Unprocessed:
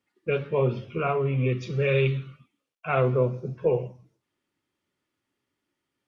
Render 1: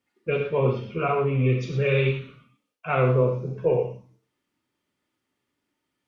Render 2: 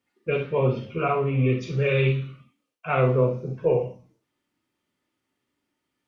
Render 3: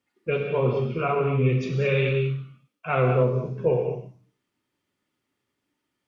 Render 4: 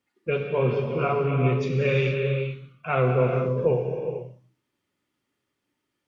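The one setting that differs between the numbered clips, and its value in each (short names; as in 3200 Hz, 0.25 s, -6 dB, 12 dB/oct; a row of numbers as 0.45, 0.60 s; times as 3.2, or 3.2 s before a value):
non-linear reverb, gate: 140, 90, 250, 490 ms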